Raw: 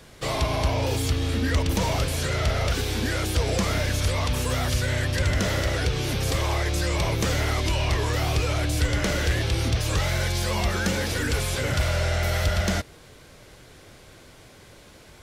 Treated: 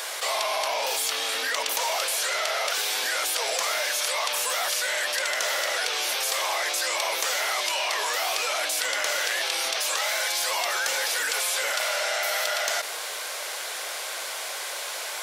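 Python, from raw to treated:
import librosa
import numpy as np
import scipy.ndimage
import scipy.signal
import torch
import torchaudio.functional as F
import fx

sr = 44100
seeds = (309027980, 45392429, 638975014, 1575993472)

y = scipy.signal.sosfilt(scipy.signal.butter(4, 620.0, 'highpass', fs=sr, output='sos'), x)
y = fx.high_shelf(y, sr, hz=6400.0, db=6.5)
y = fx.env_flatten(y, sr, amount_pct=70)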